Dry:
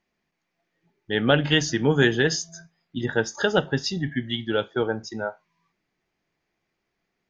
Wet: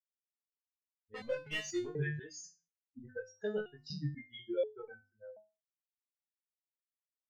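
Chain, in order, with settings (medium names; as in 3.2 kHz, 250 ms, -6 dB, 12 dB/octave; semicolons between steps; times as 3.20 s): expander on every frequency bin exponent 3; hum notches 50/100/150/200/250 Hz; level-controlled noise filter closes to 480 Hz, open at -26 dBFS; ten-band graphic EQ 125 Hz +9 dB, 250 Hz -6 dB, 500 Hz +10 dB, 1 kHz -12 dB, 2 kHz +6 dB, 4 kHz -8 dB; compression 6:1, threshold -31 dBFS, peak gain reduction 16 dB; 1.14–1.87 s: overdrive pedal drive 21 dB, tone 1.8 kHz, clips at -20.5 dBFS; chorus 0.55 Hz, delay 19.5 ms, depth 3.5 ms; resonator arpeggio 4.1 Hz 150–510 Hz; trim +12.5 dB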